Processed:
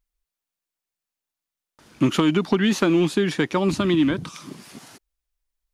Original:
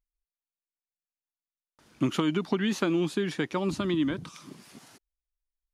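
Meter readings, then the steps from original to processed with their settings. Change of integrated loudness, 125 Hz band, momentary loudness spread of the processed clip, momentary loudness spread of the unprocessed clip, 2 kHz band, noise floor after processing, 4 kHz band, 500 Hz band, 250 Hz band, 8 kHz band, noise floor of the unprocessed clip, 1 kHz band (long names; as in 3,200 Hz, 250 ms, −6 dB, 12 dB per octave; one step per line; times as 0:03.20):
+7.5 dB, +7.5 dB, 13 LU, 13 LU, +7.5 dB, below −85 dBFS, +7.5 dB, +7.5 dB, +7.5 dB, +8.0 dB, below −85 dBFS, +7.5 dB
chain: loose part that buzzes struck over −31 dBFS, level −37 dBFS
in parallel at −6.5 dB: hard clipping −22 dBFS, distortion −15 dB
on the sum: level +4.5 dB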